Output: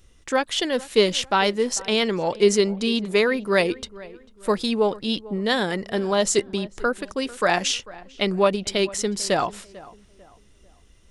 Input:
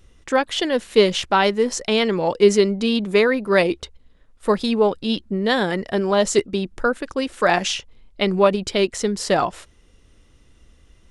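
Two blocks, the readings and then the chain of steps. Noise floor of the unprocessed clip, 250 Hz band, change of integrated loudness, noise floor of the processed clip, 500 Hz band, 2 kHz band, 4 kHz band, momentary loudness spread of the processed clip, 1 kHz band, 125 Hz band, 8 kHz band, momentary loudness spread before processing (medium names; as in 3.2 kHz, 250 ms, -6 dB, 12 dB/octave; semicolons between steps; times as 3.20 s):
-54 dBFS, -3.5 dB, -2.5 dB, -54 dBFS, -3.5 dB, -2.0 dB, -0.5 dB, 9 LU, -3.0 dB, -3.5 dB, +2.0 dB, 7 LU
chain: treble shelf 3.8 kHz +7 dB; filtered feedback delay 445 ms, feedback 36%, low-pass 2.1 kHz, level -19.5 dB; trim -3.5 dB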